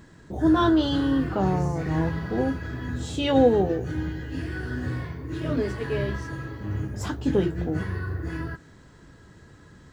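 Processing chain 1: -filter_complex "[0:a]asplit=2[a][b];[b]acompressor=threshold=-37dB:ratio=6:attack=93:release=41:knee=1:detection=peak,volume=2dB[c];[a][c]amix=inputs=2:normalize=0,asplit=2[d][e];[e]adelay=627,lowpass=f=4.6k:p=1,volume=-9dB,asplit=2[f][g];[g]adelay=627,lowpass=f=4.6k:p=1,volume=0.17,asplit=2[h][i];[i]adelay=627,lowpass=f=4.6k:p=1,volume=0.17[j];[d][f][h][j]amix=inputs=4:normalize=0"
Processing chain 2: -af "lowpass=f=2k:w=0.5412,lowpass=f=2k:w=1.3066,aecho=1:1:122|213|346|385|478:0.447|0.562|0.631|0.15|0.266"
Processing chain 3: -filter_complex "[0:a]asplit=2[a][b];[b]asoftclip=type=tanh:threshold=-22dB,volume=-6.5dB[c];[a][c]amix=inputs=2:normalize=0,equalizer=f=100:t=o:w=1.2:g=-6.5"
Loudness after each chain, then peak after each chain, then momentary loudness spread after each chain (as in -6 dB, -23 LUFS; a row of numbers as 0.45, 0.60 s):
-22.0, -23.5, -25.0 LUFS; -5.0, -6.5, -7.5 dBFS; 9, 12, 14 LU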